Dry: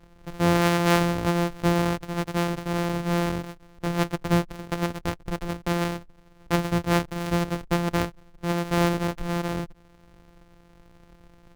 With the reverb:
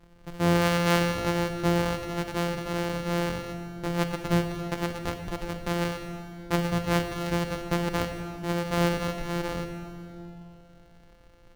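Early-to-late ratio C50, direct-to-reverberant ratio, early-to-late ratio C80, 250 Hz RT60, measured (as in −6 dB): 6.5 dB, 6.0 dB, 7.5 dB, 3.5 s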